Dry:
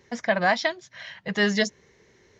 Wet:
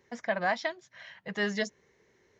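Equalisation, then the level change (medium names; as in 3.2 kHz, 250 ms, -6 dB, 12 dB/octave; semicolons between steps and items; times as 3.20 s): bass shelf 210 Hz -6 dB; peaking EQ 4.6 kHz -5 dB 1.7 oct; -6.0 dB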